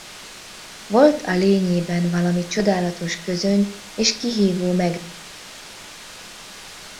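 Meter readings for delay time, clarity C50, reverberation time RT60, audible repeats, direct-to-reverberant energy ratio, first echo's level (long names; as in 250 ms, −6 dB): no echo audible, 15.5 dB, 0.45 s, no echo audible, 8.0 dB, no echo audible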